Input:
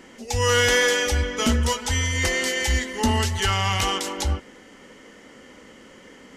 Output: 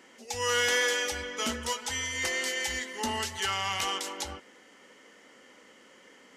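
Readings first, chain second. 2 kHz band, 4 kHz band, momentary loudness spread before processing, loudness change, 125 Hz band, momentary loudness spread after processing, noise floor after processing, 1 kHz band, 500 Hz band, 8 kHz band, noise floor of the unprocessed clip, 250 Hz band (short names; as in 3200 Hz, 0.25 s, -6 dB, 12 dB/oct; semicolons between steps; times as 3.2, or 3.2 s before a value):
-6.5 dB, -6.0 dB, 8 LU, -7.5 dB, -21.5 dB, 10 LU, -57 dBFS, -7.0 dB, -9.0 dB, -6.0 dB, -48 dBFS, -13.0 dB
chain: HPF 510 Hz 6 dB/oct; gain -6 dB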